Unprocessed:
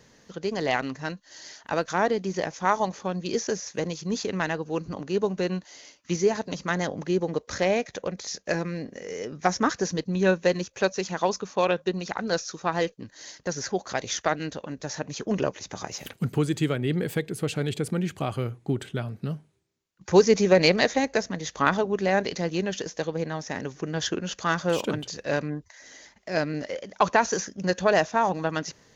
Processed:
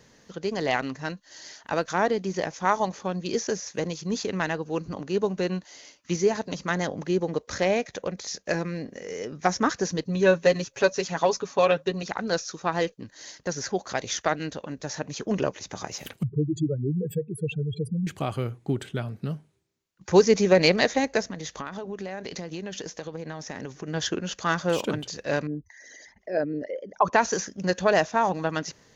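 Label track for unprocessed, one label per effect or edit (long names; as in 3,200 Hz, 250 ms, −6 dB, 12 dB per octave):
10.040000	12.030000	comb filter 7.2 ms
16.230000	18.070000	expanding power law on the bin magnitudes exponent 3.8
21.300000	23.880000	downward compressor 12 to 1, threshold −30 dBFS
25.470000	27.130000	spectral envelope exaggerated exponent 2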